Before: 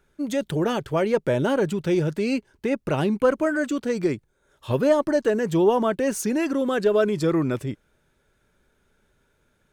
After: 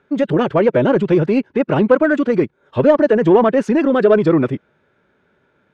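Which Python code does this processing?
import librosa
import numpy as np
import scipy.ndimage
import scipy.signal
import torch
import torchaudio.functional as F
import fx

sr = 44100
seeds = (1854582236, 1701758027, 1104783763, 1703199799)

p1 = fx.stretch_vocoder(x, sr, factor=0.59)
p2 = fx.bandpass_edges(p1, sr, low_hz=140.0, high_hz=2500.0)
p3 = 10.0 ** (-20.0 / 20.0) * np.tanh(p2 / 10.0 ** (-20.0 / 20.0))
p4 = p2 + (p3 * 10.0 ** (-5.5 / 20.0))
y = p4 * 10.0 ** (6.5 / 20.0)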